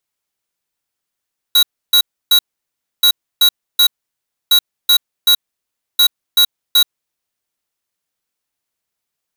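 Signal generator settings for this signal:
beeps in groups square 3,880 Hz, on 0.08 s, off 0.30 s, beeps 3, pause 0.64 s, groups 4, −9.5 dBFS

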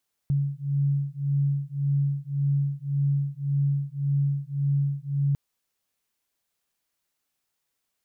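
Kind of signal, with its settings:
two tones that beat 140 Hz, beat 1.8 Hz, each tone −25.5 dBFS 5.05 s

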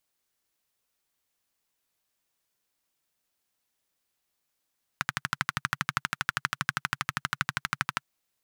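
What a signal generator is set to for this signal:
pulse-train model of a single-cylinder engine, steady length 3.04 s, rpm 1,500, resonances 140/1,400 Hz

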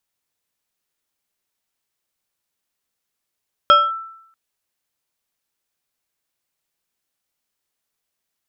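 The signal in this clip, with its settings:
two-operator FM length 0.64 s, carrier 1,330 Hz, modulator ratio 1.44, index 0.66, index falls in 0.22 s linear, decay 0.75 s, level −5 dB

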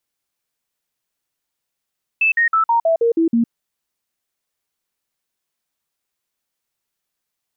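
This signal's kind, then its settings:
stepped sweep 2,630 Hz down, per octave 2, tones 8, 0.11 s, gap 0.05 s −12 dBFS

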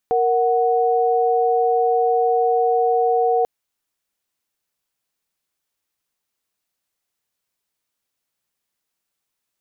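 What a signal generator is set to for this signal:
held notes A#4/F#5 sine, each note −17.5 dBFS 3.34 s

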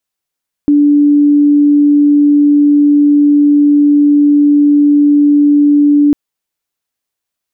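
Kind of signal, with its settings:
tone sine 291 Hz −4.5 dBFS 5.45 s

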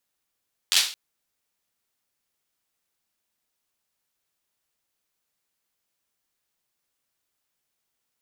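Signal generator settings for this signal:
synth clap length 0.22 s, bursts 5, apart 11 ms, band 3,800 Hz, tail 0.40 s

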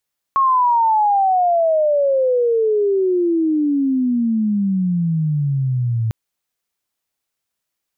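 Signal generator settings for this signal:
glide logarithmic 1,100 Hz → 110 Hz −11.5 dBFS → −16 dBFS 5.75 s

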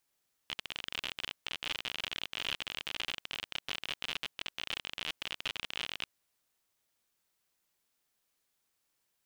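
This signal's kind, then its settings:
Geiger counter clicks 53 per second −20 dBFS 5.56 s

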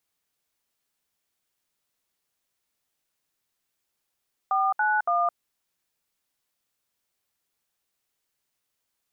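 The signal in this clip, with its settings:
touch tones "491", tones 215 ms, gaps 67 ms, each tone −23 dBFS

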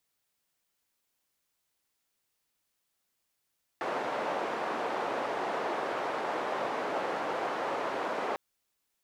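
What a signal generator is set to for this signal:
band-limited noise 460–780 Hz, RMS −33 dBFS 4.55 s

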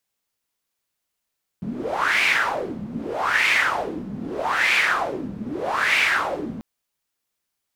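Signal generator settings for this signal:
wind from filtered noise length 4.99 s, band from 200 Hz, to 2,300 Hz, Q 4.8, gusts 4, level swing 13.5 dB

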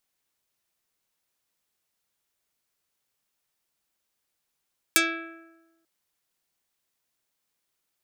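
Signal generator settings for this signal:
Karplus-Strong string E4, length 0.89 s, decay 1.16 s, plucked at 0.33, dark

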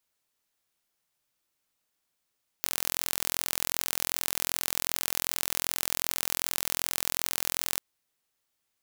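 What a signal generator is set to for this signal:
impulse train 42.6 per second, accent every 0, −1.5 dBFS 5.16 s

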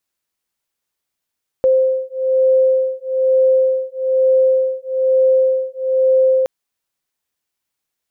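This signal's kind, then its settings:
two tones that beat 522 Hz, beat 1.1 Hz, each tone −15 dBFS 4.82 s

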